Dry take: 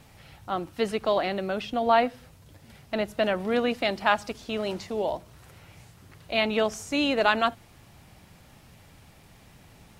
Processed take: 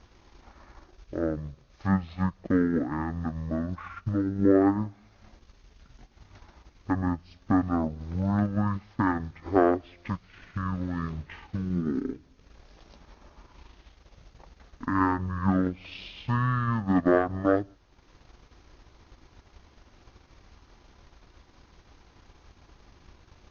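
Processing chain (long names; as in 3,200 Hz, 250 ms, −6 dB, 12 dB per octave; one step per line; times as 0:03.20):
change of speed 0.425×
transient designer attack +5 dB, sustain −7 dB
level −2 dB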